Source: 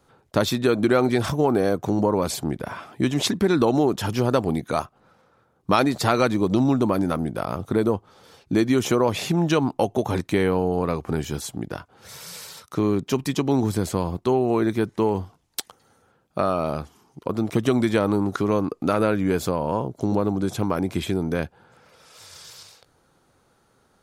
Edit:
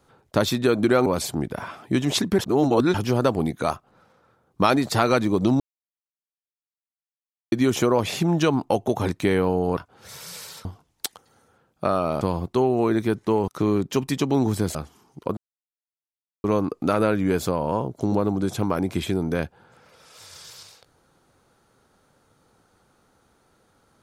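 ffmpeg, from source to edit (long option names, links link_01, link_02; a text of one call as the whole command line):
ffmpeg -i in.wav -filter_complex "[0:a]asplit=13[link_01][link_02][link_03][link_04][link_05][link_06][link_07][link_08][link_09][link_10][link_11][link_12][link_13];[link_01]atrim=end=1.062[link_14];[link_02]atrim=start=2.148:end=3.482[link_15];[link_03]atrim=start=3.478:end=4.032,asetpts=PTS-STARTPTS,areverse[link_16];[link_04]atrim=start=4.028:end=6.69,asetpts=PTS-STARTPTS,afade=type=out:start_time=2.658:duration=0.004:curve=hsin[link_17];[link_05]atrim=start=6.69:end=8.61,asetpts=PTS-STARTPTS,volume=0[link_18];[link_06]atrim=start=8.61:end=10.862,asetpts=PTS-STARTPTS,afade=type=in:duration=0.004:curve=hsin[link_19];[link_07]atrim=start=11.768:end=12.652[link_20];[link_08]atrim=start=15.188:end=16.752[link_21];[link_09]atrim=start=13.918:end=15.192[link_22];[link_10]atrim=start=12.648:end=13.922[link_23];[link_11]atrim=start=16.748:end=17.37,asetpts=PTS-STARTPTS,afade=type=out:start_time=0.618:duration=0.004:curve=hsin[link_24];[link_12]atrim=start=17.37:end=18.44,asetpts=PTS-STARTPTS,volume=0[link_25];[link_13]atrim=start=18.44,asetpts=PTS-STARTPTS,afade=type=in:duration=0.004:curve=hsin[link_26];[link_14][link_15]acrossfade=duration=0.004:curve1=hsin:curve2=hsin[link_27];[link_27][link_16]acrossfade=duration=0.004:curve1=hsin:curve2=hsin[link_28];[link_17][link_18][link_19]concat=n=3:v=0:a=1[link_29];[link_28][link_29]acrossfade=duration=0.004:curve1=hsin:curve2=hsin[link_30];[link_30][link_20]acrossfade=duration=0.004:curve1=hsin:curve2=hsin[link_31];[link_31][link_21]acrossfade=duration=0.004:curve1=hsin:curve2=hsin[link_32];[link_32][link_22]acrossfade=duration=0.004:curve1=hsin:curve2=hsin[link_33];[link_33][link_23]acrossfade=duration=0.004:curve1=hsin:curve2=hsin[link_34];[link_24][link_25][link_26]concat=n=3:v=0:a=1[link_35];[link_34][link_35]acrossfade=duration=0.004:curve1=hsin:curve2=hsin" out.wav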